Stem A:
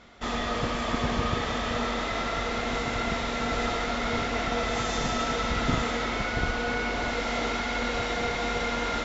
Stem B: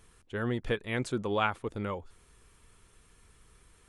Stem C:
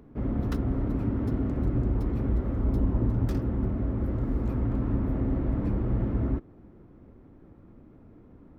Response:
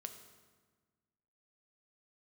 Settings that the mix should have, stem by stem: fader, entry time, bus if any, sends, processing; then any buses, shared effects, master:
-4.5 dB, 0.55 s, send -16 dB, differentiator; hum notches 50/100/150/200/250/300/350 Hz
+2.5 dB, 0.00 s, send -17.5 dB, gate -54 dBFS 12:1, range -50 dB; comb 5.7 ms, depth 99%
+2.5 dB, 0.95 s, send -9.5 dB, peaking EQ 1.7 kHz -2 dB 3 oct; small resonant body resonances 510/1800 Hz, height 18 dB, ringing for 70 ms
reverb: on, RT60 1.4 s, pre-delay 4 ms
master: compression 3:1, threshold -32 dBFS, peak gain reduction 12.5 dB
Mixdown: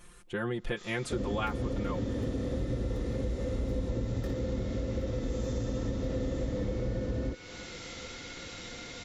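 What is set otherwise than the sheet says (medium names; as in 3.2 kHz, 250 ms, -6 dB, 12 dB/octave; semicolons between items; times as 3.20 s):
stem B: missing gate -54 dBFS 12:1, range -50 dB; stem C: send off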